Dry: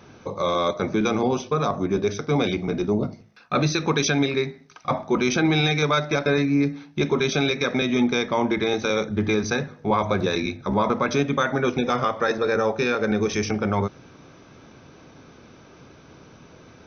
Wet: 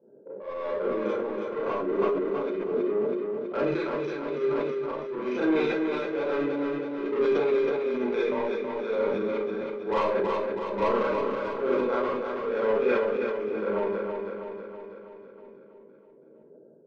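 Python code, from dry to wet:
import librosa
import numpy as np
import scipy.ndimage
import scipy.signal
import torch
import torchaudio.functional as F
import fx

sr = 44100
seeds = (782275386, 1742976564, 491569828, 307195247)

p1 = fx.wiener(x, sr, points=41)
p2 = scipy.signal.sosfilt(scipy.signal.butter(2, 1600.0, 'lowpass', fs=sr, output='sos'), p1)
p3 = fx.env_lowpass(p2, sr, base_hz=560.0, full_db=-18.0)
p4 = scipy.signal.sosfilt(scipy.signal.butter(4, 240.0, 'highpass', fs=sr, output='sos'), p3)
p5 = p4 + 0.64 * np.pad(p4, (int(2.0 * sr / 1000.0), 0))[:len(p4)]
p6 = 10.0 ** (-19.5 / 20.0) * np.tanh(p5 / 10.0 ** (-19.5 / 20.0))
p7 = p6 * (1.0 - 0.79 / 2.0 + 0.79 / 2.0 * np.cos(2.0 * np.pi * 1.1 * (np.arange(len(p6)) / sr)))
p8 = p7 + fx.echo_feedback(p7, sr, ms=324, feedback_pct=58, wet_db=-5.0, dry=0)
p9 = fx.rev_schroeder(p8, sr, rt60_s=0.33, comb_ms=28, drr_db=-6.5)
p10 = fx.sustainer(p9, sr, db_per_s=24.0)
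y = p10 * 10.0 ** (-7.0 / 20.0)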